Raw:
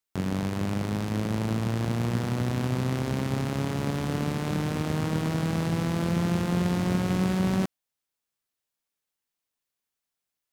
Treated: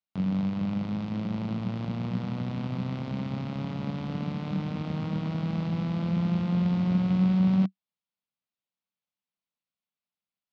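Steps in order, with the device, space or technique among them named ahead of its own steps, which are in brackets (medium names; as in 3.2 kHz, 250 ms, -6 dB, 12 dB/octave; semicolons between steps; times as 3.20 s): guitar cabinet (cabinet simulation 80–4400 Hz, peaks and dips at 190 Hz +10 dB, 390 Hz -8 dB, 1.7 kHz -7 dB); trim -5.5 dB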